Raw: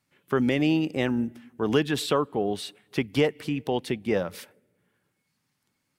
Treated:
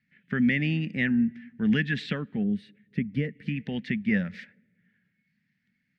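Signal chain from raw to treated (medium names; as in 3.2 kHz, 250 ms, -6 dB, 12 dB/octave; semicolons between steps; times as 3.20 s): distance through air 180 m; time-frequency box 2.43–3.46 s, 590–8400 Hz -12 dB; FFT filter 120 Hz 0 dB, 210 Hz +12 dB, 330 Hz -10 dB, 520 Hz -10 dB, 1.1 kHz -18 dB, 1.8 kHz +13 dB, 3 kHz +1 dB, 11 kHz -5 dB; trim -2 dB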